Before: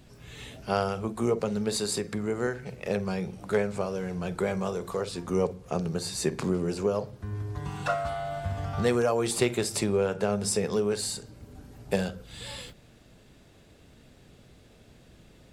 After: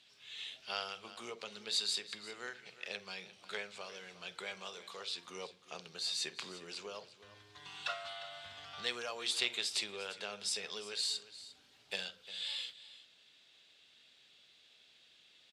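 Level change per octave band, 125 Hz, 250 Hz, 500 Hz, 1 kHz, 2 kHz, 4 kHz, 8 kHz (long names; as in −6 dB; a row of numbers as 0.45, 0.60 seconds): −31.0, −26.0, −20.5, −13.5, −5.0, +1.5, −9.0 decibels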